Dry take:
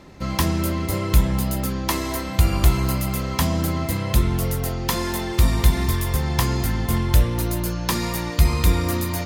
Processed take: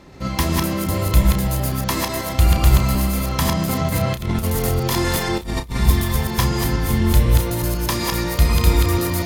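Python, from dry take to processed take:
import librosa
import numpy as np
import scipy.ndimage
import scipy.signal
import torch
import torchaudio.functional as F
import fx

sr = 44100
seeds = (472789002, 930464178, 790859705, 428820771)

y = fx.reverse_delay(x, sr, ms=123, wet_db=-1)
y = fx.over_compress(y, sr, threshold_db=-21.0, ratio=-0.5, at=(3.64, 5.77))
y = fx.doubler(y, sr, ms=32.0, db=-9)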